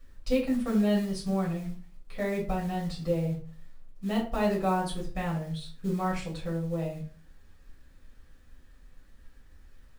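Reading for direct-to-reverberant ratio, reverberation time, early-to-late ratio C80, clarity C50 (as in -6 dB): -4.5 dB, 0.40 s, 12.5 dB, 7.5 dB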